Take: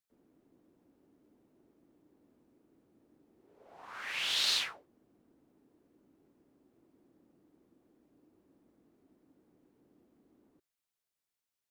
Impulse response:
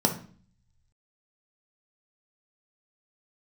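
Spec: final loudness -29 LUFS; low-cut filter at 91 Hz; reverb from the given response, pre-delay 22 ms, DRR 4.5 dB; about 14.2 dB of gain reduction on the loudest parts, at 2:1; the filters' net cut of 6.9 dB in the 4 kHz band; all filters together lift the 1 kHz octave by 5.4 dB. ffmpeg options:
-filter_complex "[0:a]highpass=91,equalizer=f=1000:t=o:g=7.5,equalizer=f=4000:t=o:g=-9,acompressor=threshold=0.00112:ratio=2,asplit=2[s0][s1];[1:a]atrim=start_sample=2205,adelay=22[s2];[s1][s2]afir=irnorm=-1:irlink=0,volume=0.15[s3];[s0][s3]amix=inputs=2:normalize=0,volume=26.6"

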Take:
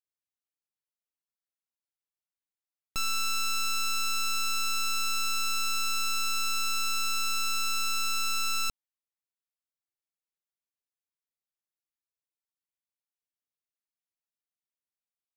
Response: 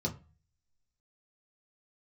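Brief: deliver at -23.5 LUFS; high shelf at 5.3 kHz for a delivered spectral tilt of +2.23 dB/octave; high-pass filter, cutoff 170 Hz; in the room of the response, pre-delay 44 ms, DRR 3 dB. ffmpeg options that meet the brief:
-filter_complex "[0:a]highpass=170,highshelf=f=5300:g=8,asplit=2[s0][s1];[1:a]atrim=start_sample=2205,adelay=44[s2];[s1][s2]afir=irnorm=-1:irlink=0,volume=0.473[s3];[s0][s3]amix=inputs=2:normalize=0,volume=1.06"

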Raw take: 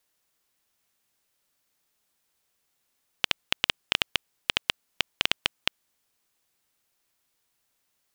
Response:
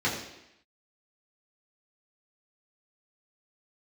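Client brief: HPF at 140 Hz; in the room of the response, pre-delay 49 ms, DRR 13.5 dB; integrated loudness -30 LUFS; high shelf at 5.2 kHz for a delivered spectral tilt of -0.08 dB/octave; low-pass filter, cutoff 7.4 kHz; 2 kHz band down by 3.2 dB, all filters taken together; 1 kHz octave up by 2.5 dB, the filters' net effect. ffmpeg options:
-filter_complex "[0:a]highpass=140,lowpass=7400,equalizer=f=1000:t=o:g=5,equalizer=f=2000:t=o:g=-7.5,highshelf=f=5200:g=9,asplit=2[s0][s1];[1:a]atrim=start_sample=2205,adelay=49[s2];[s1][s2]afir=irnorm=-1:irlink=0,volume=0.0562[s3];[s0][s3]amix=inputs=2:normalize=0,volume=0.891"

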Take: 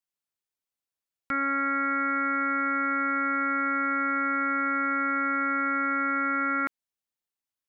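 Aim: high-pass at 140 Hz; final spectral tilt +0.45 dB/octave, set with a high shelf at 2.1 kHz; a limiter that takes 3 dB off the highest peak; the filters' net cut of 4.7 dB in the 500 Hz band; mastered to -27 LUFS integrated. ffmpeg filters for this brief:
-af "highpass=140,equalizer=f=500:t=o:g=-5.5,highshelf=f=2100:g=6,volume=1.06,alimiter=limit=0.119:level=0:latency=1"

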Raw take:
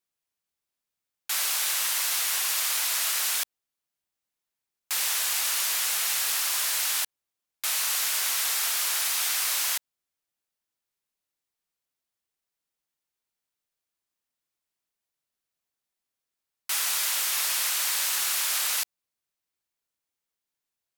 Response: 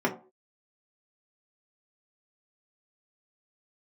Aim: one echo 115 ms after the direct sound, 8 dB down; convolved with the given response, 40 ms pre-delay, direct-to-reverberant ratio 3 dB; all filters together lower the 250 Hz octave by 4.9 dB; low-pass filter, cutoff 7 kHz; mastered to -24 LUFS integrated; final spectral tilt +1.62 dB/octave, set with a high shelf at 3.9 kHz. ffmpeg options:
-filter_complex "[0:a]lowpass=7000,equalizer=f=250:t=o:g=-7.5,highshelf=f=3900:g=6,aecho=1:1:115:0.398,asplit=2[s0][s1];[1:a]atrim=start_sample=2205,adelay=40[s2];[s1][s2]afir=irnorm=-1:irlink=0,volume=0.178[s3];[s0][s3]amix=inputs=2:normalize=0"

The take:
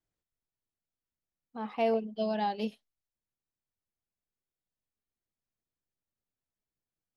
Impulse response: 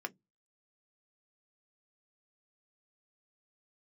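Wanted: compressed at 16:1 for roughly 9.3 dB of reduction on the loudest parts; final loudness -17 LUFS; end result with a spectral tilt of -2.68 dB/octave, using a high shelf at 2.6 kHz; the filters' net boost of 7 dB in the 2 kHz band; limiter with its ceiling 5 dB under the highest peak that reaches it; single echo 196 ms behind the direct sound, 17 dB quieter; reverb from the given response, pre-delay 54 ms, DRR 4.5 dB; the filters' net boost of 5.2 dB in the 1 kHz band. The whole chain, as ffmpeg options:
-filter_complex "[0:a]equalizer=f=1000:t=o:g=6,equalizer=f=2000:t=o:g=4.5,highshelf=f=2600:g=6,acompressor=threshold=0.0316:ratio=16,alimiter=level_in=1.26:limit=0.0631:level=0:latency=1,volume=0.794,aecho=1:1:196:0.141,asplit=2[s0][s1];[1:a]atrim=start_sample=2205,adelay=54[s2];[s1][s2]afir=irnorm=-1:irlink=0,volume=0.531[s3];[s0][s3]amix=inputs=2:normalize=0,volume=10"

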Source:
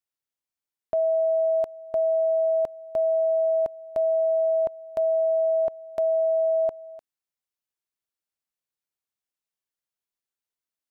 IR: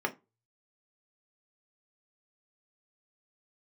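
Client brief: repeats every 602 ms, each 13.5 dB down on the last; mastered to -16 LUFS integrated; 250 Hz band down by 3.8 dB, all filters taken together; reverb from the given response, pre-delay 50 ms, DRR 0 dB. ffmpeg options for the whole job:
-filter_complex "[0:a]equalizer=f=250:t=o:g=-5.5,aecho=1:1:602|1204:0.211|0.0444,asplit=2[s0][s1];[1:a]atrim=start_sample=2205,adelay=50[s2];[s1][s2]afir=irnorm=-1:irlink=0,volume=0.422[s3];[s0][s3]amix=inputs=2:normalize=0,volume=1.58"

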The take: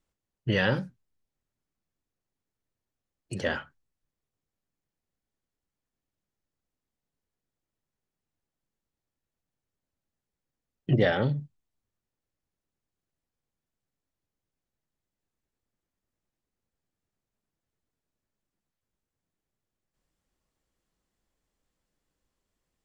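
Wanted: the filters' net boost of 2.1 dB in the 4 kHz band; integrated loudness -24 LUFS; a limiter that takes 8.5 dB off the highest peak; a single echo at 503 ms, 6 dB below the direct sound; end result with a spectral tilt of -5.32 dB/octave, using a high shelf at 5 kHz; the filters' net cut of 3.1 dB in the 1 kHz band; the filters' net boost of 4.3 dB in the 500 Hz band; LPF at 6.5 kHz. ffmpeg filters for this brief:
-af "lowpass=6500,equalizer=f=500:t=o:g=7,equalizer=f=1000:t=o:g=-8.5,equalizer=f=4000:t=o:g=6,highshelf=f=5000:g=-4.5,alimiter=limit=0.141:level=0:latency=1,aecho=1:1:503:0.501,volume=2.24"

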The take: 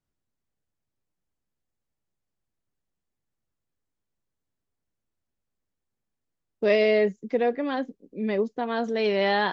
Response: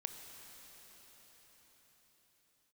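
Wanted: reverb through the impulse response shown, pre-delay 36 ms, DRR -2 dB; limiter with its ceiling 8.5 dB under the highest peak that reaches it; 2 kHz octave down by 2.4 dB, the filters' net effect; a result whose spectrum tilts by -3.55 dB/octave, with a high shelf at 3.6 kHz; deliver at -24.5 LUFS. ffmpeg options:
-filter_complex "[0:a]equalizer=f=2000:t=o:g=-4.5,highshelf=f=3600:g=6.5,alimiter=limit=0.119:level=0:latency=1,asplit=2[s0][s1];[1:a]atrim=start_sample=2205,adelay=36[s2];[s1][s2]afir=irnorm=-1:irlink=0,volume=1.58[s3];[s0][s3]amix=inputs=2:normalize=0"

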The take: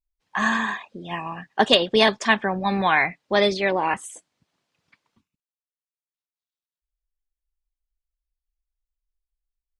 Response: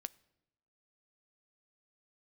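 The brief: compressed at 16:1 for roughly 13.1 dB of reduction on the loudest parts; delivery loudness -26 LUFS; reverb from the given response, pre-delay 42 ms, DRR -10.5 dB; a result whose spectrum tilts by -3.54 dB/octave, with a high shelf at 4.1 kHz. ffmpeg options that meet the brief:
-filter_complex "[0:a]highshelf=f=4100:g=5,acompressor=threshold=0.0794:ratio=16,asplit=2[s0][s1];[1:a]atrim=start_sample=2205,adelay=42[s2];[s1][s2]afir=irnorm=-1:irlink=0,volume=5.01[s3];[s0][s3]amix=inputs=2:normalize=0,volume=0.376"

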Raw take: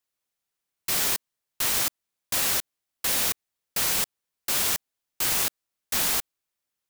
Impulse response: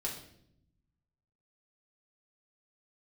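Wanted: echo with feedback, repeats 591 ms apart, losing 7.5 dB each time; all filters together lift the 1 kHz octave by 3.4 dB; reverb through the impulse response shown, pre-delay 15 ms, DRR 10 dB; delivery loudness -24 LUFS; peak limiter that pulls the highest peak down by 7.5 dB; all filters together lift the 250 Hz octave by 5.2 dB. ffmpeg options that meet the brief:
-filter_complex "[0:a]equalizer=f=250:t=o:g=6.5,equalizer=f=1000:t=o:g=4,alimiter=limit=0.126:level=0:latency=1,aecho=1:1:591|1182|1773|2364|2955:0.422|0.177|0.0744|0.0312|0.0131,asplit=2[s0][s1];[1:a]atrim=start_sample=2205,adelay=15[s2];[s1][s2]afir=irnorm=-1:irlink=0,volume=0.251[s3];[s0][s3]amix=inputs=2:normalize=0,volume=1.68"

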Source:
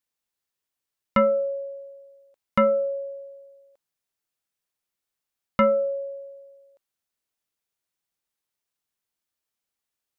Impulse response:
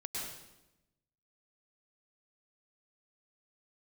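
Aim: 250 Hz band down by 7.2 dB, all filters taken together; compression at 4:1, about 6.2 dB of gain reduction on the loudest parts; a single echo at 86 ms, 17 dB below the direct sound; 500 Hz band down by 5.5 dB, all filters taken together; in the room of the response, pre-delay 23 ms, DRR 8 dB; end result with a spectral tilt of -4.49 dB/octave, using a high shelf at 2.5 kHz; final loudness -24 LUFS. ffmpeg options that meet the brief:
-filter_complex "[0:a]equalizer=f=250:t=o:g=-8,equalizer=f=500:t=o:g=-4.5,highshelf=f=2500:g=-4.5,acompressor=threshold=0.0501:ratio=4,aecho=1:1:86:0.141,asplit=2[s0][s1];[1:a]atrim=start_sample=2205,adelay=23[s2];[s1][s2]afir=irnorm=-1:irlink=0,volume=0.355[s3];[s0][s3]amix=inputs=2:normalize=0,volume=2.66"

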